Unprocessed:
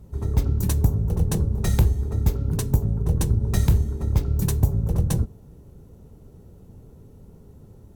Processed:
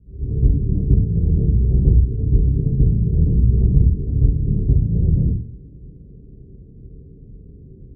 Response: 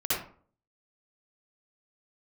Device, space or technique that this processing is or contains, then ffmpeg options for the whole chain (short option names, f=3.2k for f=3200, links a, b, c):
next room: -filter_complex "[0:a]lowpass=f=380:w=0.5412,lowpass=f=380:w=1.3066[a];[1:a]atrim=start_sample=2205[b];[a][b]afir=irnorm=-1:irlink=0,volume=-3.5dB"